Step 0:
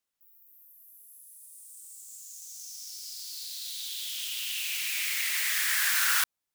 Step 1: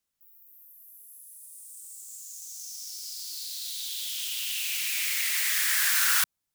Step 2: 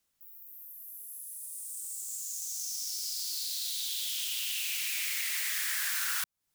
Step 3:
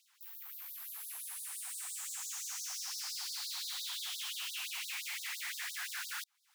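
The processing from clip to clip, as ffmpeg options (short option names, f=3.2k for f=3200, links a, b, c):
-af "bass=f=250:g=8,treble=f=4k:g=3"
-af "acompressor=threshold=-37dB:ratio=4,volume=5dB"
-filter_complex "[0:a]asplit=2[a][b];[b]highpass=f=720:p=1,volume=26dB,asoftclip=type=tanh:threshold=-19.5dB[c];[a][c]amix=inputs=2:normalize=0,lowpass=f=1.8k:p=1,volume=-6dB,asoftclip=type=tanh:threshold=-37.5dB,afftfilt=real='re*gte(b*sr/1024,680*pow(3700/680,0.5+0.5*sin(2*PI*5.8*pts/sr)))':imag='im*gte(b*sr/1024,680*pow(3700/680,0.5+0.5*sin(2*PI*5.8*pts/sr)))':win_size=1024:overlap=0.75"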